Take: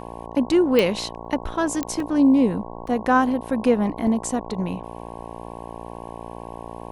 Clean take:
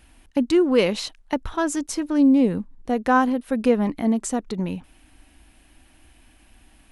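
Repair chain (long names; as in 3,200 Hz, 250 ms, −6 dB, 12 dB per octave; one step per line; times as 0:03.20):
click removal
hum removal 57.8 Hz, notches 19
repair the gap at 0:01.25/0:02.00/0:02.87/0:04.07, 2.5 ms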